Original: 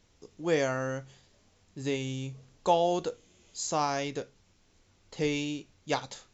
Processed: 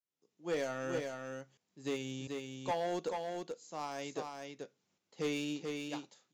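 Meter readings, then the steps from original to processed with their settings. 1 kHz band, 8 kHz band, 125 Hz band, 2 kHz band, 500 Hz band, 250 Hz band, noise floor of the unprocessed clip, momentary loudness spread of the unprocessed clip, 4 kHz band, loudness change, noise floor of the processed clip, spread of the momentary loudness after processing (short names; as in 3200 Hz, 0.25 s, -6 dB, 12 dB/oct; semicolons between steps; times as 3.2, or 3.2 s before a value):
-9.5 dB, n/a, -10.0 dB, -6.5 dB, -7.0 dB, -5.5 dB, -66 dBFS, 15 LU, -7.0 dB, -8.0 dB, under -85 dBFS, 11 LU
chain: HPF 150 Hz 24 dB/oct; tremolo saw up 0.88 Hz, depth 100%; overloaded stage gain 28.5 dB; on a send: echo 0.435 s -3 dB; on the sum: upward expander 1.5:1, over -50 dBFS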